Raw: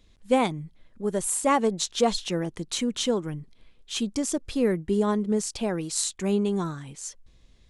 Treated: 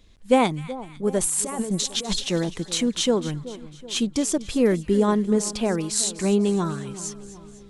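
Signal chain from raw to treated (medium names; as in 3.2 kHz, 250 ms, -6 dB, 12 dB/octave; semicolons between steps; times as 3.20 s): 1.21–2.24 s: compressor with a negative ratio -31 dBFS, ratio -1; two-band feedback delay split 1.2 kHz, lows 377 ms, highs 250 ms, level -15.5 dB; trim +4 dB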